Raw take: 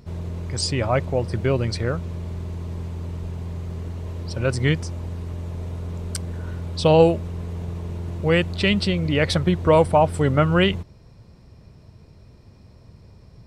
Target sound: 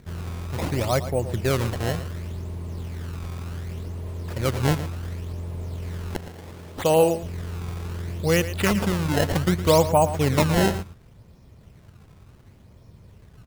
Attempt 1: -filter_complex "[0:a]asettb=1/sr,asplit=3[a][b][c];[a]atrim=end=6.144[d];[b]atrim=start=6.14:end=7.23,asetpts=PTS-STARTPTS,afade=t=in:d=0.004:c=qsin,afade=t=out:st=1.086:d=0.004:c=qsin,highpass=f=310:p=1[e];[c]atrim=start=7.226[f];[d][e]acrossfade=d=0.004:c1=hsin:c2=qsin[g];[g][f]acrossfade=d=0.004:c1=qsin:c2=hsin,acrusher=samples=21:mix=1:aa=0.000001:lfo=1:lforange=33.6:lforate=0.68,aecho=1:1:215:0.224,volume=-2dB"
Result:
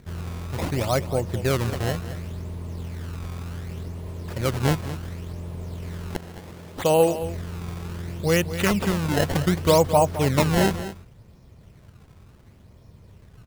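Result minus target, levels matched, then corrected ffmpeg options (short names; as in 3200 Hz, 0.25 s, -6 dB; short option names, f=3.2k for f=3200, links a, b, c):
echo 0.101 s late
-filter_complex "[0:a]asettb=1/sr,asplit=3[a][b][c];[a]atrim=end=6.144[d];[b]atrim=start=6.14:end=7.23,asetpts=PTS-STARTPTS,afade=t=in:d=0.004:c=qsin,afade=t=out:st=1.086:d=0.004:c=qsin,highpass=f=310:p=1[e];[c]atrim=start=7.226[f];[d][e]acrossfade=d=0.004:c1=hsin:c2=qsin[g];[g][f]acrossfade=d=0.004:c1=qsin:c2=hsin,acrusher=samples=21:mix=1:aa=0.000001:lfo=1:lforange=33.6:lforate=0.68,aecho=1:1:114:0.224,volume=-2dB"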